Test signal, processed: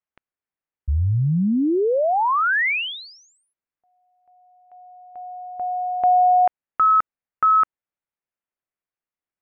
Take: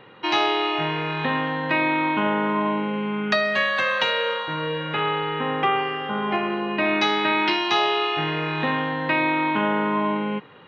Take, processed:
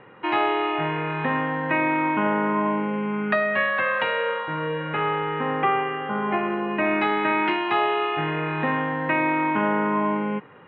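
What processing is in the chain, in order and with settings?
low-pass filter 2,400 Hz 24 dB per octave

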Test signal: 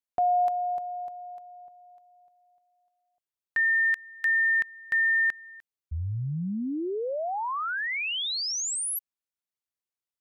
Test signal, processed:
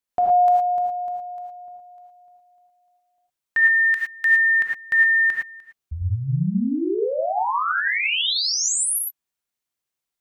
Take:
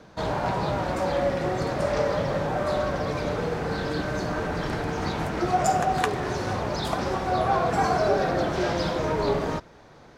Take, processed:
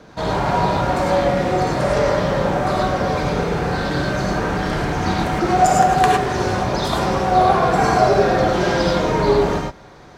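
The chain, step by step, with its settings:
reverb whose tail is shaped and stops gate 130 ms rising, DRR −0.5 dB
level +4.5 dB

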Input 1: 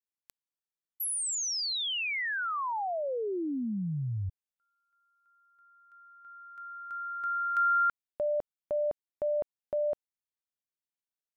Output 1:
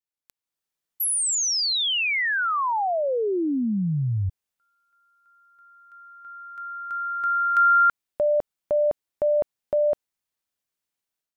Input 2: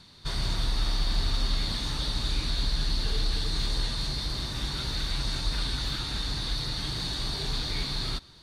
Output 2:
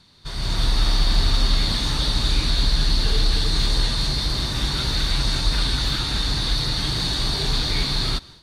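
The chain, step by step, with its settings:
automatic gain control gain up to 10.5 dB
level −2 dB

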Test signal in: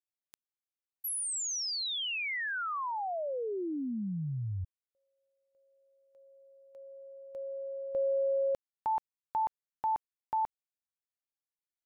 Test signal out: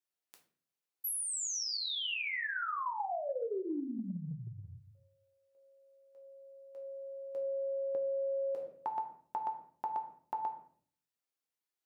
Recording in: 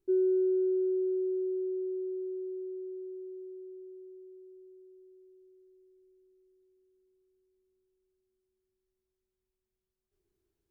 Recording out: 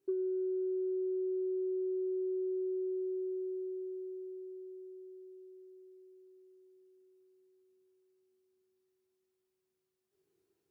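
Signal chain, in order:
rectangular room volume 48 cubic metres, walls mixed, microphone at 0.61 metres
downward compressor 16 to 1, threshold −33 dBFS
Bessel high-pass filter 260 Hz, order 2
low-shelf EQ 330 Hz +4 dB

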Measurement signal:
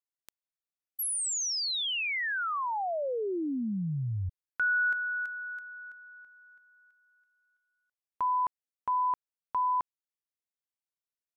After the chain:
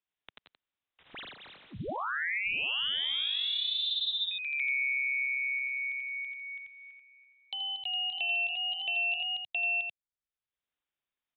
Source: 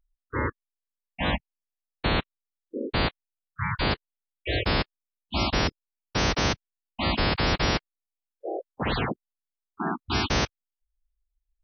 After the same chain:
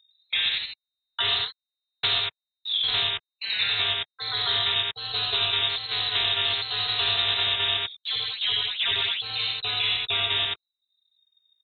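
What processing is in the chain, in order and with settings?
leveller curve on the samples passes 3
high-frequency loss of the air 150 metres
single-tap delay 87 ms −3.5 dB
voice inversion scrambler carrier 3,700 Hz
delay with pitch and tempo change per echo 108 ms, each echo +1 semitone, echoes 2, each echo −6 dB
multiband upward and downward compressor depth 70%
level −8.5 dB

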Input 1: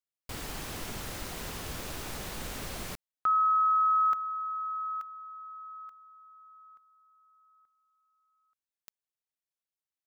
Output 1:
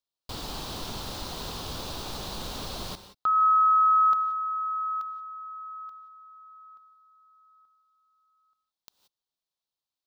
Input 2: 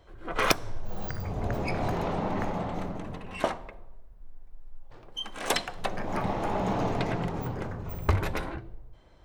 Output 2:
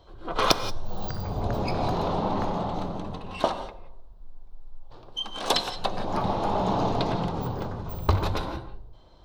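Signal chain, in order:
graphic EQ with 10 bands 1,000 Hz +5 dB, 2,000 Hz −11 dB, 4,000 Hz +10 dB, 8,000 Hz −4 dB, 16,000 Hz −5 dB
reverb whose tail is shaped and stops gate 200 ms rising, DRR 11 dB
level +2 dB

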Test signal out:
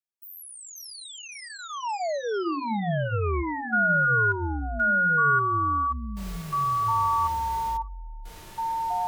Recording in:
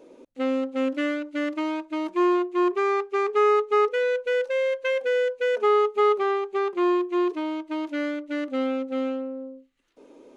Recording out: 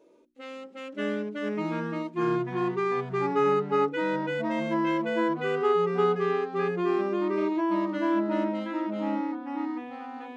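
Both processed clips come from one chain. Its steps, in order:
mains-hum notches 60/120/180/240/300/360 Hz
delay with pitch and tempo change per echo 482 ms, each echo −4 semitones, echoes 3
harmonic and percussive parts rebalanced percussive −15 dB
notch comb filter 260 Hz
level −4 dB

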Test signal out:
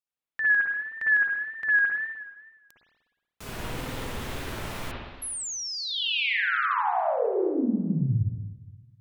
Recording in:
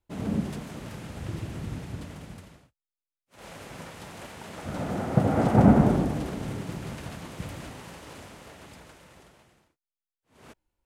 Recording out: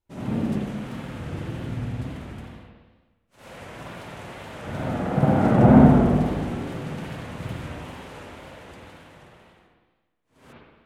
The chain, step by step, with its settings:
spring reverb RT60 1.3 s, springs 52/60 ms, chirp 40 ms, DRR −7 dB
tape wow and flutter 74 cents
level −3.5 dB

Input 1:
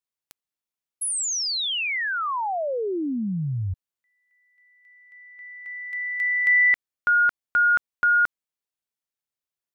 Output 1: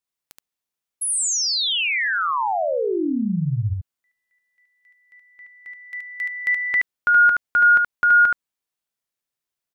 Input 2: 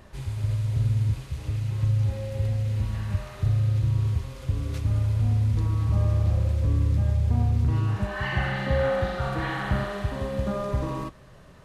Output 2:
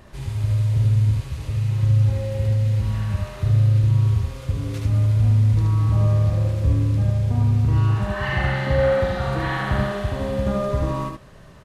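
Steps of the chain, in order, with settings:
single-tap delay 74 ms −3 dB
level +2.5 dB

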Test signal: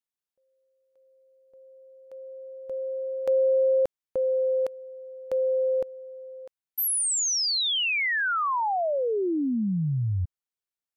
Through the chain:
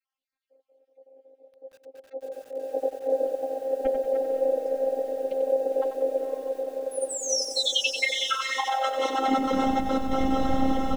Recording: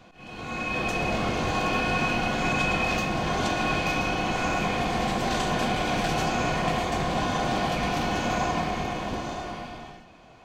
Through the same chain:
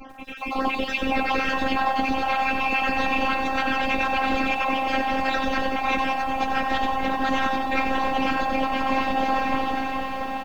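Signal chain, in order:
time-frequency cells dropped at random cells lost 53%
low-pass filter 3,200 Hz 12 dB per octave
dynamic equaliser 910 Hz, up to +4 dB, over −44 dBFS, Q 1.6
comb filter 7 ms, depth 84%
feedback delay with all-pass diffusion 494 ms, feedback 69%, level −7.5 dB
in parallel at −1 dB: brickwall limiter −21.5 dBFS
on the sum: random phases in short frames
compressor whose output falls as the input rises −24 dBFS, ratio −1
flanger 0.23 Hz, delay 6.6 ms, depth 1.4 ms, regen +30%
phases set to zero 265 Hz
feedback echo at a low word length 93 ms, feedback 55%, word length 9 bits, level −8 dB
level +6 dB

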